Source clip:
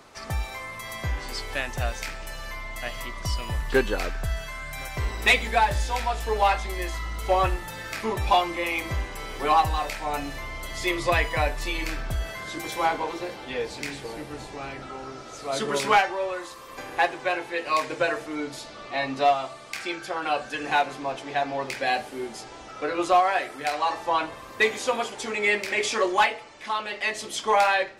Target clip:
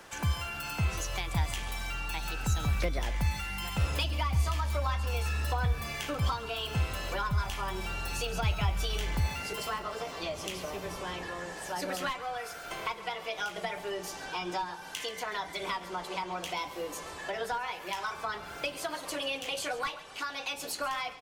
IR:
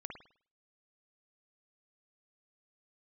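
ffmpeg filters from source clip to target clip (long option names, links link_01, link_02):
-filter_complex "[0:a]acrossover=split=160[link_01][link_02];[link_02]acompressor=threshold=-34dB:ratio=4[link_03];[link_01][link_03]amix=inputs=2:normalize=0,asetrate=58212,aresample=44100,aecho=1:1:136|272|408:0.158|0.0602|0.0229"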